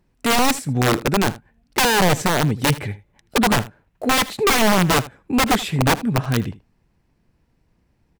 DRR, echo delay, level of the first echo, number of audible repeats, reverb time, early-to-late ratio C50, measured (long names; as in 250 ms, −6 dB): no reverb audible, 79 ms, −18.0 dB, 1, no reverb audible, no reverb audible